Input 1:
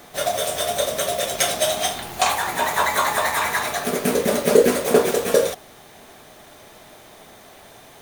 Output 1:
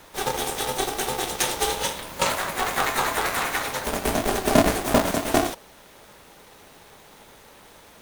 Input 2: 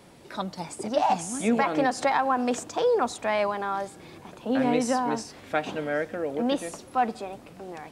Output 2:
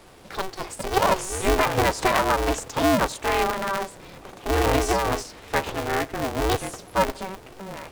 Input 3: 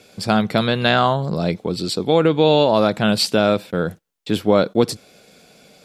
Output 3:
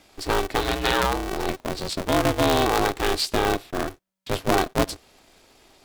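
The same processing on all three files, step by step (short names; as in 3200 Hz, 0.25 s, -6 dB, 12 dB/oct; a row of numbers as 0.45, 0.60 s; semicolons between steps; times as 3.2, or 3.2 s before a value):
polarity switched at an audio rate 190 Hz; match loudness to -24 LUFS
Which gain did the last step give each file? -3.5, +2.5, -6.0 dB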